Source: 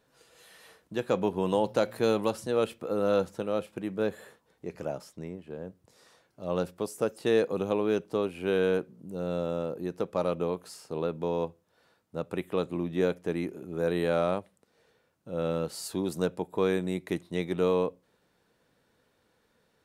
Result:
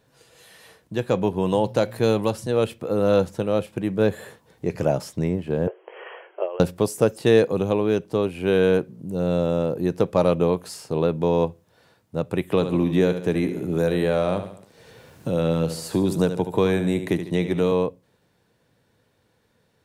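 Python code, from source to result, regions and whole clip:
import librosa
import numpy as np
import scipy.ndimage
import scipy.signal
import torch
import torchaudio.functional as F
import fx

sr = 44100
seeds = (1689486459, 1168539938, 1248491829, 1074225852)

y = fx.chain(x, sr, fx.brickwall_bandpass(low_hz=340.0, high_hz=3300.0),
    fx.over_compress(threshold_db=-41.0, ratio=-1.0), at=(5.67, 6.6))
y = fx.chain(y, sr, fx.echo_feedback(ms=73, feedback_pct=37, wet_db=-10.5),
    fx.band_squash(depth_pct=70), at=(12.5, 17.72))
y = fx.peak_eq(y, sr, hz=1300.0, db=-4.0, octaves=0.28)
y = fx.rider(y, sr, range_db=10, speed_s=2.0)
y = fx.peak_eq(y, sr, hz=110.0, db=8.5, octaves=1.0)
y = F.gain(torch.from_numpy(y), 6.5).numpy()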